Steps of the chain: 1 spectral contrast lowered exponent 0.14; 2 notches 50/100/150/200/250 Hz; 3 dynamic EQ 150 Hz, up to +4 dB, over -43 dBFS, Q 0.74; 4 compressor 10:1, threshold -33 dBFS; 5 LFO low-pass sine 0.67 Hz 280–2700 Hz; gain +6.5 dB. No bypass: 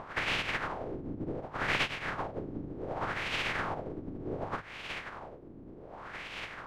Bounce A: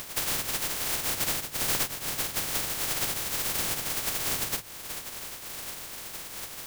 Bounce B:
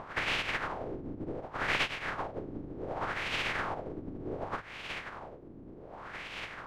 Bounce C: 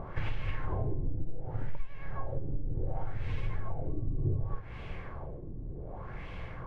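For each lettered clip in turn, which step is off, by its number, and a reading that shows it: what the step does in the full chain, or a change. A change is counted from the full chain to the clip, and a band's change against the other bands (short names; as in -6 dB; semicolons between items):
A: 5, 8 kHz band +26.0 dB; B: 3, 125 Hz band -2.0 dB; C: 1, 125 Hz band +15.5 dB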